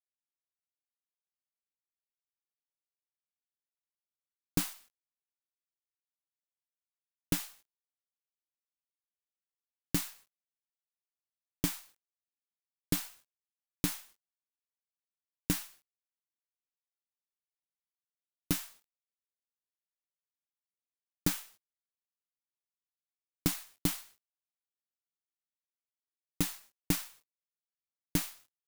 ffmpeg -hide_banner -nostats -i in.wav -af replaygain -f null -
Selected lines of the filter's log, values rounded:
track_gain = +25.4 dB
track_peak = 0.172